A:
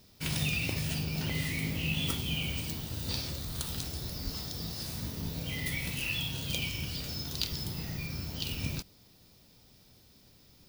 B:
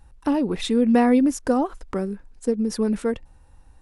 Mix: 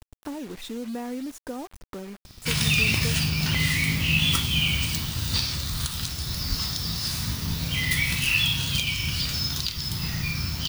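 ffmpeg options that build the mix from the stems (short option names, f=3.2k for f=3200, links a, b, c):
-filter_complex "[0:a]firequalizer=gain_entry='entry(530,0);entry(1100,13);entry(16000,4)':delay=0.05:min_phase=1,asoftclip=type=tanh:threshold=-1dB,bass=f=250:g=10,treble=f=4k:g=3,adelay=2250,volume=-0.5dB[a];[1:a]acompressor=threshold=-39dB:ratio=2,acrusher=bits=6:mix=0:aa=0.000001,volume=-2.5dB[b];[a][b]amix=inputs=2:normalize=0,alimiter=limit=-9.5dB:level=0:latency=1:release=361"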